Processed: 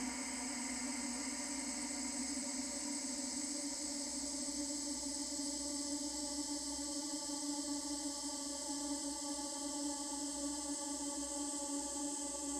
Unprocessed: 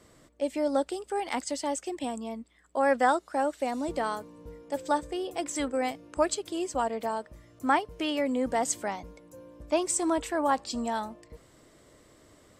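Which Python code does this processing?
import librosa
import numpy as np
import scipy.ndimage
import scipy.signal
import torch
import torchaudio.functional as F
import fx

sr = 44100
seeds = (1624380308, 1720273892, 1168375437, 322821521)

y = fx.tone_stack(x, sr, knobs='6-0-2')
y = fx.filter_lfo_notch(y, sr, shape='sine', hz=0.26, low_hz=600.0, high_hz=4300.0, q=1.2)
y = fx.paulstretch(y, sr, seeds[0], factor=39.0, window_s=0.5, from_s=1.41)
y = F.gain(torch.from_numpy(y), 12.0).numpy()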